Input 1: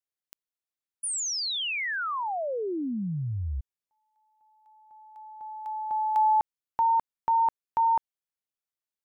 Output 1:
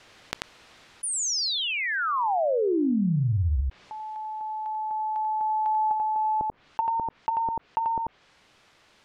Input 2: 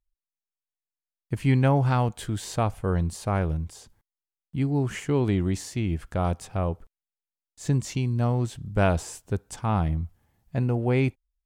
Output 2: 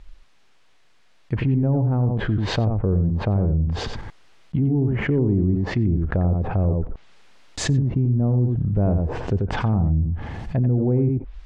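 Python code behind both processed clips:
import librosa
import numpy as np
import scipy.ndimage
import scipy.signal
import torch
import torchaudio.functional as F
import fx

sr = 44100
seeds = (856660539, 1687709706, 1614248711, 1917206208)

p1 = np.clip(x, -10.0 ** (-25.5 / 20.0), 10.0 ** (-25.5 / 20.0))
p2 = x + (p1 * 10.0 ** (-11.0 / 20.0))
p3 = scipy.signal.sosfilt(scipy.signal.butter(2, 3600.0, 'lowpass', fs=sr, output='sos'), p2)
p4 = fx.rider(p3, sr, range_db=10, speed_s=2.0)
p5 = fx.env_lowpass_down(p4, sr, base_hz=410.0, full_db=-22.5)
p6 = p5 + fx.echo_single(p5, sr, ms=89, db=-8.0, dry=0)
y = fx.env_flatten(p6, sr, amount_pct=70)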